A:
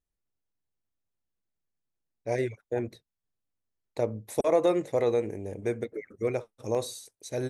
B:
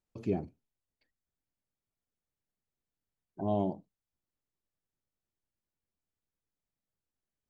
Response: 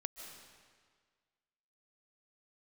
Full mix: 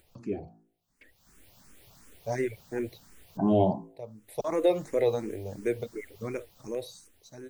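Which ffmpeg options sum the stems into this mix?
-filter_complex "[0:a]volume=-10dB[a];[1:a]acompressor=mode=upward:threshold=-41dB:ratio=2.5,bandreject=f=55.03:t=h:w=4,bandreject=f=110.06:t=h:w=4,bandreject=f=165.09:t=h:w=4,bandreject=f=220.12:t=h:w=4,bandreject=f=275.15:t=h:w=4,bandreject=f=330.18:t=h:w=4,bandreject=f=385.21:t=h:w=4,bandreject=f=440.24:t=h:w=4,bandreject=f=495.27:t=h:w=4,bandreject=f=550.3:t=h:w=4,bandreject=f=605.33:t=h:w=4,bandreject=f=660.36:t=h:w=4,bandreject=f=715.39:t=h:w=4,bandreject=f=770.42:t=h:w=4,bandreject=f=825.45:t=h:w=4,bandreject=f=880.48:t=h:w=4,bandreject=f=935.51:t=h:w=4,bandreject=f=990.54:t=h:w=4,bandreject=f=1.04557k:t=h:w=4,bandreject=f=1.1006k:t=h:w=4,bandreject=f=1.15563k:t=h:w=4,bandreject=f=1.21066k:t=h:w=4,bandreject=f=1.26569k:t=h:w=4,bandreject=f=1.32072k:t=h:w=4,bandreject=f=1.37575k:t=h:w=4,bandreject=f=1.43078k:t=h:w=4,bandreject=f=1.48581k:t=h:w=4,bandreject=f=1.54084k:t=h:w=4,bandreject=f=1.59587k:t=h:w=4,bandreject=f=1.6509k:t=h:w=4,bandreject=f=1.70593k:t=h:w=4,volume=0dB,asplit=2[b][c];[c]apad=whole_len=330428[d];[a][d]sidechaincompress=threshold=-53dB:ratio=4:attack=9.8:release=516[e];[e][b]amix=inputs=2:normalize=0,dynaudnorm=f=260:g=9:m=12dB,asplit=2[f][g];[g]afreqshift=2.8[h];[f][h]amix=inputs=2:normalize=1"

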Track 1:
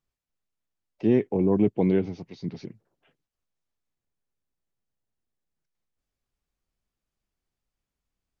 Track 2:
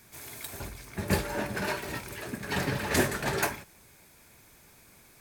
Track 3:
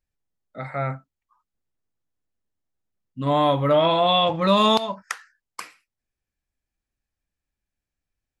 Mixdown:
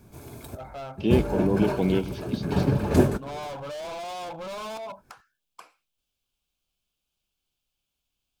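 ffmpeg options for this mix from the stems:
-filter_complex "[0:a]equalizer=f=3.1k:t=o:w=0.97:g=13,crystalizer=i=1.5:c=0,volume=-2dB[a];[1:a]tiltshelf=f=970:g=9.5,volume=1dB[b];[2:a]equalizer=f=720:w=0.83:g=14,volume=18.5dB,asoftclip=hard,volume=-18.5dB,volume=-15.5dB,asplit=2[c][d];[d]apad=whole_len=229648[e];[b][e]sidechaincompress=threshold=-60dB:ratio=4:attack=8.2:release=183[f];[a][f][c]amix=inputs=3:normalize=0,equalizer=f=1.9k:w=7.7:g=-14.5"

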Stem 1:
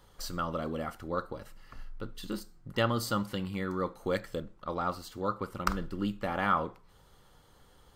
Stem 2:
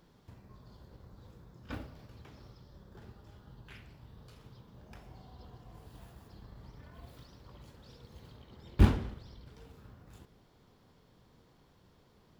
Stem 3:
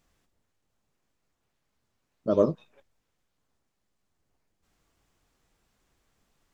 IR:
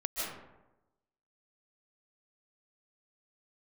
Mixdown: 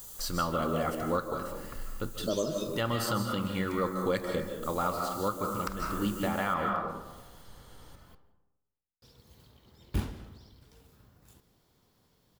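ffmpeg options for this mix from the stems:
-filter_complex "[0:a]volume=1dB,asplit=2[a][b];[b]volume=-5dB[c];[1:a]highshelf=f=5.6k:g=11,adelay=1150,volume=-6.5dB,asplit=3[d][e][f];[d]atrim=end=8.15,asetpts=PTS-STARTPTS,afade=t=out:st=8.146:d=0.004:c=hsin[g];[e]atrim=start=8.15:end=9.02,asetpts=PTS-STARTPTS,volume=0[h];[f]atrim=start=9.02,asetpts=PTS-STARTPTS,afade=t=in:d=0.004:c=hsin[i];[g][h][i]concat=n=3:v=0:a=1,asplit=2[j][k];[k]volume=-20.5dB[l];[2:a]aemphasis=mode=production:type=50kf,bandreject=f=5.4k:w=6.8,aexciter=amount=5.2:drive=8.3:freq=3k,volume=-3dB,asplit=3[m][n][o];[n]volume=-9dB[p];[o]apad=whole_len=350718[q];[a][q]sidechaincompress=threshold=-51dB:ratio=8:attack=6.2:release=219[r];[3:a]atrim=start_sample=2205[s];[c][l][p]amix=inputs=3:normalize=0[t];[t][s]afir=irnorm=-1:irlink=0[u];[r][j][m][u]amix=inputs=4:normalize=0,highshelf=f=5k:g=4,alimiter=limit=-19dB:level=0:latency=1:release=392"

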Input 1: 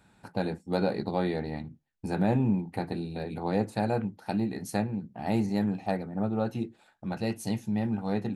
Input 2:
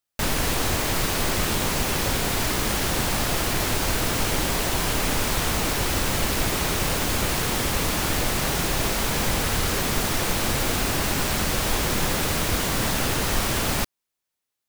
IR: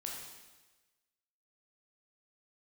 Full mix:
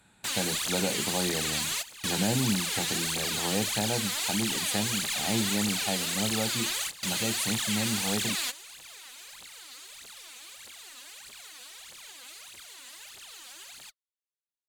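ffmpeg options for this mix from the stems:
-filter_complex "[0:a]equalizer=f=6.8k:w=0.35:g=13,volume=-2.5dB,asplit=2[a][b];[1:a]bandpass=f=5.3k:t=q:w=1.5:csg=0,aphaser=in_gain=1:out_gain=1:delay=4.2:decay=0.79:speed=1.6:type=triangular,adelay=50,volume=2dB[c];[b]apad=whole_len=649908[d];[c][d]sidechaingate=range=-16dB:threshold=-56dB:ratio=16:detection=peak[e];[a][e]amix=inputs=2:normalize=0,equalizer=f=5.4k:t=o:w=0.45:g=-13,acrossover=split=380|3000[f][g][h];[g]acompressor=threshold=-32dB:ratio=2[i];[f][i][h]amix=inputs=3:normalize=0"

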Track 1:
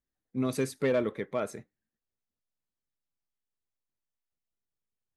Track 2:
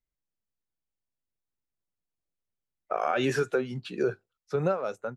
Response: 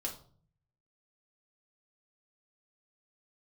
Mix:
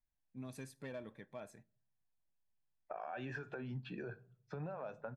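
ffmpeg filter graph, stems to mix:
-filter_complex "[0:a]volume=-17dB,asplit=2[a][b];[b]volume=-18.5dB[c];[1:a]lowpass=2.4k,alimiter=level_in=2dB:limit=-24dB:level=0:latency=1:release=114,volume=-2dB,volume=-4.5dB,asplit=2[d][e];[e]volume=-11.5dB[f];[2:a]atrim=start_sample=2205[g];[c][f]amix=inputs=2:normalize=0[h];[h][g]afir=irnorm=-1:irlink=0[i];[a][d][i]amix=inputs=3:normalize=0,aecho=1:1:1.2:0.51,acompressor=threshold=-42dB:ratio=3"

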